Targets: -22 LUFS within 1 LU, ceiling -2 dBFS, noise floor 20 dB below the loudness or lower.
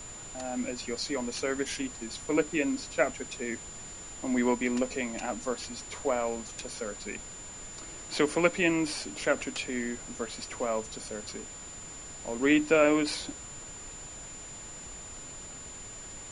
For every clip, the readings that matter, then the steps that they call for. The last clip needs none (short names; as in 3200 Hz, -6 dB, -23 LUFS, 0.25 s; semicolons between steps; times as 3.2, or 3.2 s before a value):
steady tone 7100 Hz; tone level -43 dBFS; noise floor -44 dBFS; noise floor target -52 dBFS; loudness -32.0 LUFS; peak -10.0 dBFS; loudness target -22.0 LUFS
-> notch 7100 Hz, Q 30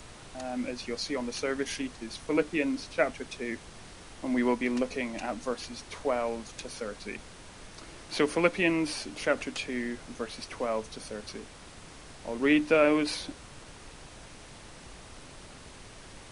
steady tone none; noise floor -49 dBFS; noise floor target -51 dBFS
-> noise print and reduce 6 dB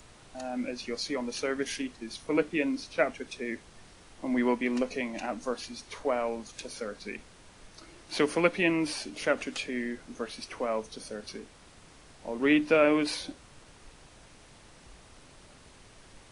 noise floor -55 dBFS; loudness -31.0 LUFS; peak -10.0 dBFS; loudness target -22.0 LUFS
-> gain +9 dB; limiter -2 dBFS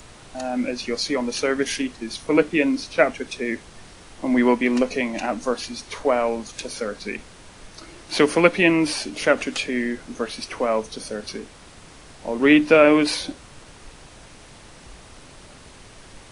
loudness -22.0 LUFS; peak -2.0 dBFS; noise floor -46 dBFS